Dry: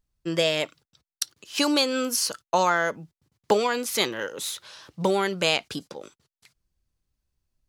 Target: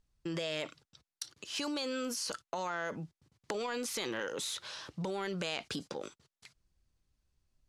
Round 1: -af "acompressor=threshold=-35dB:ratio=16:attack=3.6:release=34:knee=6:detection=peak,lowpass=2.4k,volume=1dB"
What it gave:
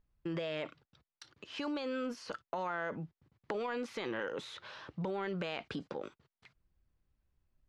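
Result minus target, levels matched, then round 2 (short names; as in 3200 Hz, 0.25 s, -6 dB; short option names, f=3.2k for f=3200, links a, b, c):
8000 Hz band -16.5 dB
-af "acompressor=threshold=-35dB:ratio=16:attack=3.6:release=34:knee=6:detection=peak,lowpass=9k,volume=1dB"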